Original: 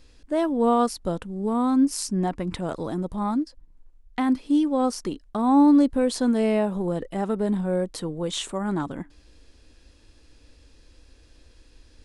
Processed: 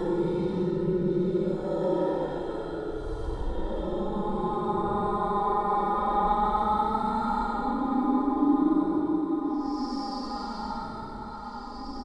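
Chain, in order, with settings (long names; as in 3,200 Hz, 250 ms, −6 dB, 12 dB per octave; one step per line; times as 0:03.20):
feedback delay that plays each chunk backwards 107 ms, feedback 58%, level −7 dB
low-pass filter 5,500 Hz 12 dB per octave
comb filter 2.2 ms, depth 69%
extreme stretch with random phases 19×, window 0.05 s, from 0:02.95
on a send: single-tap delay 516 ms −13 dB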